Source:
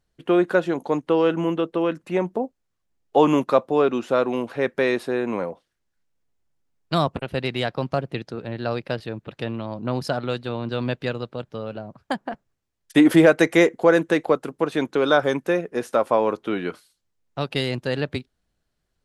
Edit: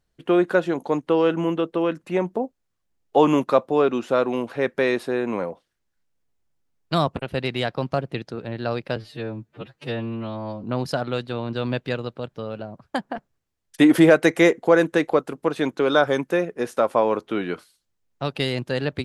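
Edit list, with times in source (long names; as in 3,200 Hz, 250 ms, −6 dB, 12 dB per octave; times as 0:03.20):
0:08.96–0:09.80: time-stretch 2×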